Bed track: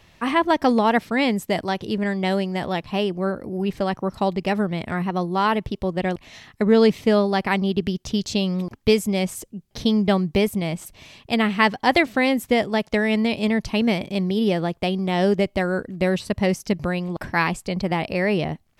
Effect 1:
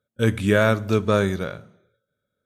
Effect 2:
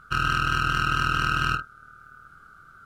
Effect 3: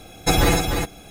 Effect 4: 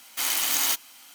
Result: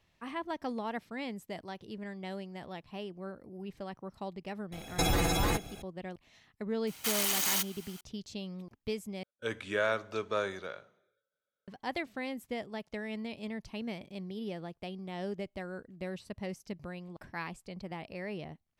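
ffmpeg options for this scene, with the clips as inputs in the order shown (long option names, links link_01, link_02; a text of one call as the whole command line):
ffmpeg -i bed.wav -i cue0.wav -i cue1.wav -i cue2.wav -i cue3.wav -filter_complex "[0:a]volume=-18.5dB[link_01];[3:a]acompressor=threshold=-19dB:ratio=6:attack=3.2:release=140:knee=1:detection=peak[link_02];[4:a]alimiter=level_in=15dB:limit=-1dB:release=50:level=0:latency=1[link_03];[1:a]acrossover=split=390 7300:gain=0.141 1 0.126[link_04][link_05][link_06];[link_04][link_05][link_06]amix=inputs=3:normalize=0[link_07];[link_01]asplit=2[link_08][link_09];[link_08]atrim=end=9.234[link_10];[link_07]atrim=end=2.45,asetpts=PTS-STARTPTS,volume=-9.5dB[link_11];[link_09]atrim=start=11.676[link_12];[link_02]atrim=end=1.1,asetpts=PTS-STARTPTS,volume=-4.5dB,afade=type=in:duration=0.004:curve=hsin,afade=type=out:start_time=1.096:duration=0.004:curve=hsin,adelay=4720[link_13];[link_03]atrim=end=1.14,asetpts=PTS-STARTPTS,volume=-17.5dB,afade=type=in:duration=0.004:curve=hsin,afade=type=out:start_time=1.136:duration=0.004:curve=hsin,adelay=6870[link_14];[link_10][link_11]acrossfade=duration=0.004:curve1=hsin:curve2=hsin[link_15];[link_15][link_12]acrossfade=duration=0.004:curve1=hsin:curve2=hsin[link_16];[link_16][link_13][link_14]amix=inputs=3:normalize=0" out.wav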